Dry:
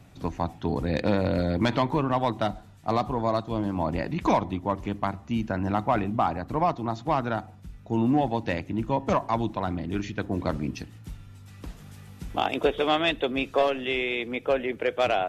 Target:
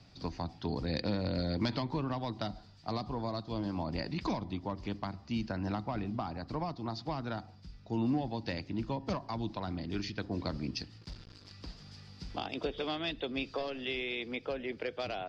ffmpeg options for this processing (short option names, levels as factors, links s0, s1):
-filter_complex "[0:a]acrossover=split=310[s0][s1];[s1]acompressor=threshold=0.0355:ratio=6[s2];[s0][s2]amix=inputs=2:normalize=0,asettb=1/sr,asplit=3[s3][s4][s5];[s3]atrim=end=11.014[s6];[s4]atrim=start=11.01:end=11.52,asetpts=PTS-STARTPTS,afade=t=in:d=0.004:c=qsin,afade=t=out:st=0.506:d=0.004:c=qsin,acrusher=bits=6:mix=0:aa=0.5[s7];[s5]atrim=start=11.516[s8];[s6][s7]acrossfade=d=0.004:c1=hsin:c2=qsin[s9];[s9][s8]acrossfade=d=0.004:c1=qsin:c2=hsin,lowpass=f=4800:t=q:w=9.2,volume=0.447"